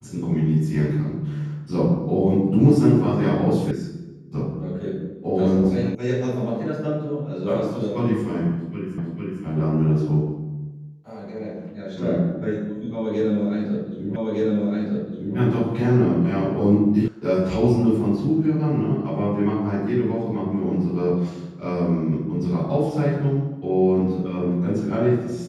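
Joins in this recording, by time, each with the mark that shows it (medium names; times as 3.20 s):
3.71 s: sound stops dead
5.95 s: sound stops dead
8.98 s: repeat of the last 0.45 s
14.16 s: repeat of the last 1.21 s
17.08 s: sound stops dead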